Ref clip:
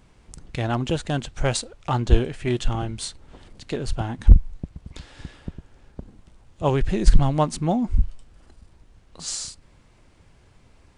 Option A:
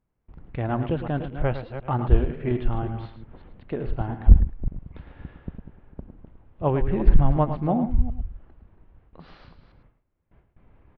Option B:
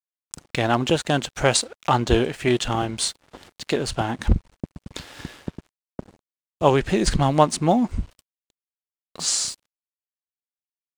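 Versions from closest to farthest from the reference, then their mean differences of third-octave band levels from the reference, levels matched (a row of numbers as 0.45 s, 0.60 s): B, A; 4.5 dB, 7.0 dB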